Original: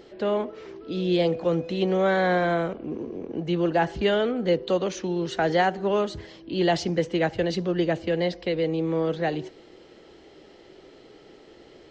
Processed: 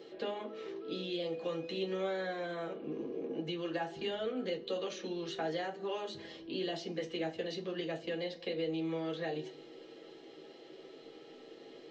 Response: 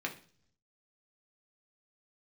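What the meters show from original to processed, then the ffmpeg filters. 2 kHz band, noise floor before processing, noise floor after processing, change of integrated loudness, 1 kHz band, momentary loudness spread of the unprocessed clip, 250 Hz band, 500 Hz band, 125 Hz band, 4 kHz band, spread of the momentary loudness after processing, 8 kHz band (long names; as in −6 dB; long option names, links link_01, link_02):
−13.5 dB, −51 dBFS, −54 dBFS, −13.0 dB, −15.5 dB, 11 LU, −13.0 dB, −12.5 dB, −17.0 dB, −8.0 dB, 16 LU, can't be measured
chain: -filter_complex "[0:a]acrossover=split=1100|6700[link_01][link_02][link_03];[link_01]acompressor=threshold=-33dB:ratio=4[link_04];[link_02]acompressor=threshold=-41dB:ratio=4[link_05];[link_03]acompressor=threshold=-59dB:ratio=4[link_06];[link_04][link_05][link_06]amix=inputs=3:normalize=0[link_07];[1:a]atrim=start_sample=2205,asetrate=70560,aresample=44100[link_08];[link_07][link_08]afir=irnorm=-1:irlink=0,volume=-2.5dB"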